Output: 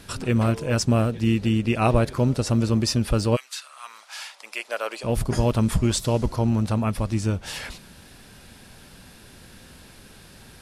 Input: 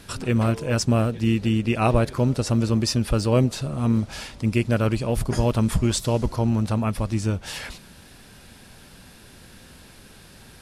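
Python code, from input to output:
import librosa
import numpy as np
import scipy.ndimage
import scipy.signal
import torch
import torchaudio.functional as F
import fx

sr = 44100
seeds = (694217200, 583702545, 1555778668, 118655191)

y = fx.highpass(x, sr, hz=fx.line((3.35, 1500.0), (5.03, 470.0)), slope=24, at=(3.35, 5.03), fade=0.02)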